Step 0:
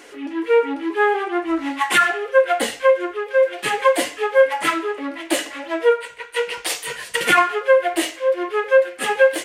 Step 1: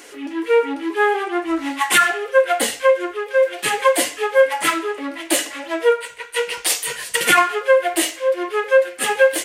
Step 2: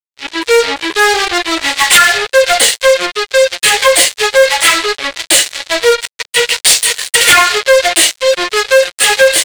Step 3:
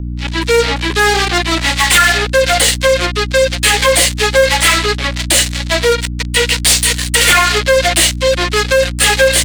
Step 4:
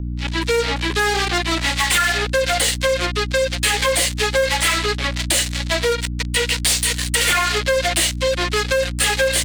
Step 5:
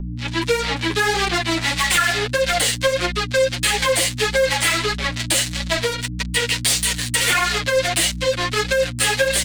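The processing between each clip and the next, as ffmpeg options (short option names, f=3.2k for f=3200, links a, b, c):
-af "highshelf=f=5k:g=9.5"
-af "acrusher=bits=3:mix=0:aa=0.5,equalizer=f=250:t=o:w=1:g=-10,equalizer=f=500:t=o:w=1:g=5,equalizer=f=2k:t=o:w=1:g=6,equalizer=f=4k:t=o:w=1:g=11,equalizer=f=8k:t=o:w=1:g=9,acontrast=80,volume=-1dB"
-filter_complex "[0:a]aeval=exprs='val(0)+0.112*(sin(2*PI*60*n/s)+sin(2*PI*2*60*n/s)/2+sin(2*PI*3*60*n/s)/3+sin(2*PI*4*60*n/s)/4+sin(2*PI*5*60*n/s)/5)':c=same,acrossover=split=390|1300[a][b][c];[c]asoftclip=type=hard:threshold=-5.5dB[d];[a][b][d]amix=inputs=3:normalize=0,alimiter=level_in=0.5dB:limit=-1dB:release=50:level=0:latency=1,volume=-1dB"
-af "acompressor=threshold=-12dB:ratio=2.5,volume=-4dB"
-af "flanger=delay=5.1:depth=4.5:regen=4:speed=1.6:shape=sinusoidal,volume=2.5dB"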